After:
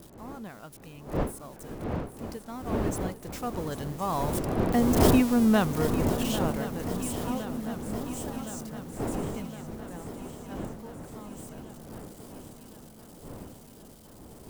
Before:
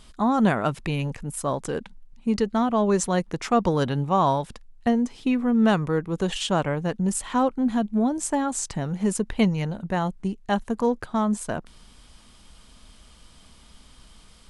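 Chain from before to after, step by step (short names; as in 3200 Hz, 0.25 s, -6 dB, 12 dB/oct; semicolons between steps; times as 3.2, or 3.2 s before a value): switching spikes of -21.5 dBFS; wind noise 410 Hz -20 dBFS; Doppler pass-by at 5.17, 9 m/s, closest 3.4 m; swung echo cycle 1.064 s, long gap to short 3:1, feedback 65%, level -12.5 dB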